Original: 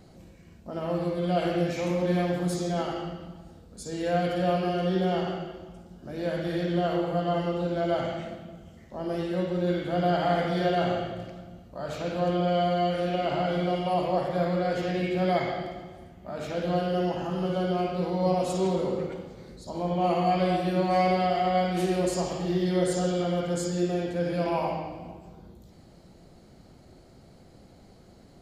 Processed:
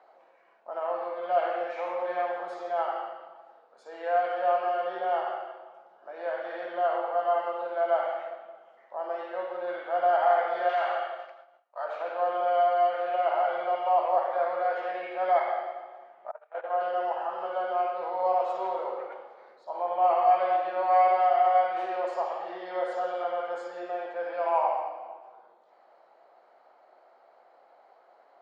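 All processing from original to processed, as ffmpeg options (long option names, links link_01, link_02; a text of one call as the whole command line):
ffmpeg -i in.wav -filter_complex "[0:a]asettb=1/sr,asplit=3[link_01][link_02][link_03];[link_01]atrim=end=10.694[link_04];[link_02]atrim=start=10.69:end=11.85,asetpts=PTS-STARTPTS,afade=type=in:duration=0.004:curve=qsin,afade=type=out:start_time=1.156:duration=0.004:curve=qsin,agate=range=-33dB:threshold=-38dB:ratio=3:release=100:detection=peak,tiltshelf=frequency=780:gain=-7,volume=25.5dB,asoftclip=hard,volume=-25.5dB[link_05];[link_03]atrim=start=11.846[link_06];[link_04][link_05]acrossfade=duration=0.004:curve1=hsin:curve2=qsin[link_07];[link_07][link_06]acrossfade=duration=0.004:curve1=qsin:curve2=hsin,asettb=1/sr,asplit=3[link_08][link_09][link_10];[link_08]atrim=end=16.314[link_11];[link_09]atrim=start=16.31:end=16.81,asetpts=PTS-STARTPTS,afade=type=in:duration=0.004:curve=qsin,afade=type=out:start_time=0.496:duration=0.004:curve=qsin,highpass=470,lowpass=2200,agate=range=-29dB:threshold=-35dB:ratio=16:release=100:detection=peak[link_12];[link_10]atrim=start=16.806[link_13];[link_11][link_12]acrossfade=duration=0.004:curve1=hsin:curve2=qsin[link_14];[link_14][link_13]acrossfade=duration=0.004:curve1=qsin:curve2=hsin,highpass=frequency=710:width=0.5412,highpass=frequency=710:width=1.3066,acontrast=42,lowpass=1100,volume=2.5dB" out.wav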